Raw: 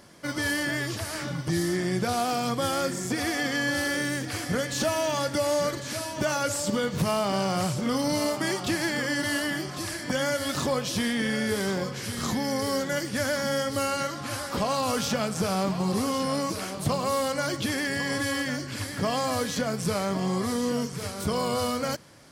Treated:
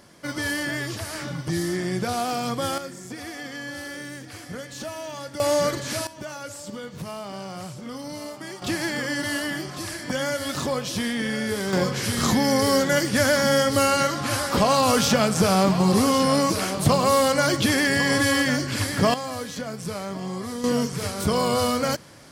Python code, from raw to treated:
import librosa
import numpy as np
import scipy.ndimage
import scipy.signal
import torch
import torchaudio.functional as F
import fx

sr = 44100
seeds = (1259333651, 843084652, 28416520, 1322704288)

y = fx.gain(x, sr, db=fx.steps((0.0, 0.5), (2.78, -8.0), (5.4, 4.0), (6.07, -9.0), (8.62, 0.5), (11.73, 7.5), (19.14, -4.0), (20.64, 5.0)))